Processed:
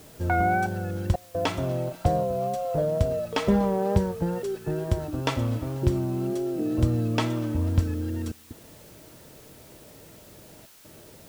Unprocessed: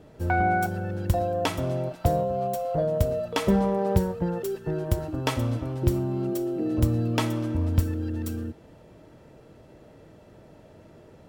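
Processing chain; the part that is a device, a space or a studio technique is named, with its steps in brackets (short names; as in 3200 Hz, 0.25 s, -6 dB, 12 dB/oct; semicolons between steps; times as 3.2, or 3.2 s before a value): worn cassette (LPF 7000 Hz; wow and flutter; level dips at 1.16/8.32/10.66, 0.184 s -27 dB; white noise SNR 26 dB)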